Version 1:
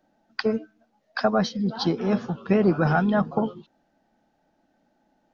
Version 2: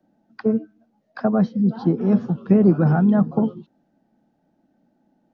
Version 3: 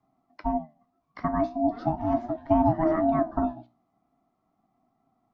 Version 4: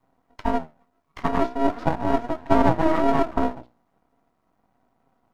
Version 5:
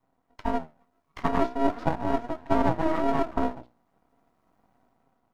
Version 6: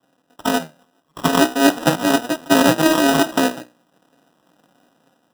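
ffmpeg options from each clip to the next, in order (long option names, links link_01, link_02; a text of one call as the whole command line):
ffmpeg -i in.wav -filter_complex "[0:a]equalizer=frequency=190:width_type=o:width=2.9:gain=13.5,acrossover=split=100|960|1800[link_01][link_02][link_03][link_04];[link_04]acompressor=threshold=-45dB:ratio=6[link_05];[link_01][link_02][link_03][link_05]amix=inputs=4:normalize=0,volume=-6.5dB" out.wav
ffmpeg -i in.wav -af "aeval=exprs='val(0)*sin(2*PI*480*n/s)':channel_layout=same,flanger=delay=7.5:depth=9.2:regen=70:speed=0.4:shape=sinusoidal" out.wav
ffmpeg -i in.wav -af "aeval=exprs='max(val(0),0)':channel_layout=same,volume=7.5dB" out.wav
ffmpeg -i in.wav -af "dynaudnorm=framelen=190:gausssize=7:maxgain=7dB,volume=-5.5dB" out.wav
ffmpeg -i in.wav -af "highpass=frequency=140:width=0.5412,highpass=frequency=140:width=1.3066,equalizer=frequency=160:width_type=q:width=4:gain=6,equalizer=frequency=300:width_type=q:width=4:gain=7,equalizer=frequency=540:width_type=q:width=4:gain=9,equalizer=frequency=1400:width_type=q:width=4:gain=5,lowpass=frequency=2300:width=0.5412,lowpass=frequency=2300:width=1.3066,acrusher=samples=20:mix=1:aa=0.000001,volume=6.5dB" out.wav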